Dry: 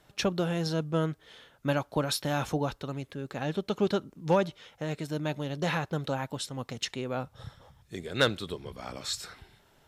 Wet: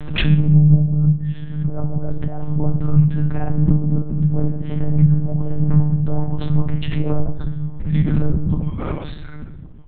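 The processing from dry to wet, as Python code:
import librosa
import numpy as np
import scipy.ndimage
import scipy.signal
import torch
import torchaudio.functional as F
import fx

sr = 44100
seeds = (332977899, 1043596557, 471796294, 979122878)

p1 = fx.lowpass(x, sr, hz=1900.0, slope=6)
p2 = fx.env_lowpass_down(p1, sr, base_hz=580.0, full_db=-28.5)
p3 = fx.dereverb_blind(p2, sr, rt60_s=1.7)
p4 = fx.low_shelf_res(p3, sr, hz=230.0, db=9.5, q=3.0)
p5 = fx.hpss(p4, sr, part='harmonic', gain_db=5)
p6 = fx.over_compress(p5, sr, threshold_db=-20.0, ratio=-1.0)
p7 = p6 + fx.echo_feedback(p6, sr, ms=1117, feedback_pct=31, wet_db=-20.0, dry=0)
p8 = fx.room_shoebox(p7, sr, seeds[0], volume_m3=200.0, walls='mixed', distance_m=0.93)
p9 = fx.lpc_monotone(p8, sr, seeds[1], pitch_hz=150.0, order=8)
p10 = fx.pre_swell(p9, sr, db_per_s=59.0)
y = p10 * librosa.db_to_amplitude(3.0)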